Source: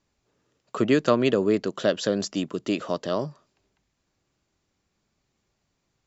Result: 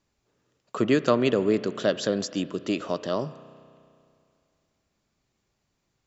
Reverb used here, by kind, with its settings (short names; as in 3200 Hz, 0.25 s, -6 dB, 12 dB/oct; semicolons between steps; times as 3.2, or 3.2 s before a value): spring tank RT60 2.4 s, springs 32 ms, chirp 50 ms, DRR 14.5 dB; gain -1 dB